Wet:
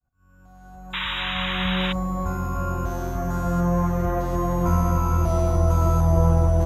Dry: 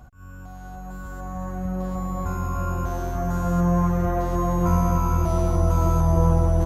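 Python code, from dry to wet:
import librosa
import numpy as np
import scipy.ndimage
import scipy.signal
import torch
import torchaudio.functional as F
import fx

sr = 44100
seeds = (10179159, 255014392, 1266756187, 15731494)

y = fx.fade_in_head(x, sr, length_s=1.61)
y = fx.room_flutter(y, sr, wall_m=6.5, rt60_s=0.21)
y = fx.spec_paint(y, sr, seeds[0], shape='noise', start_s=0.93, length_s=1.0, low_hz=870.0, high_hz=3900.0, level_db=-28.0)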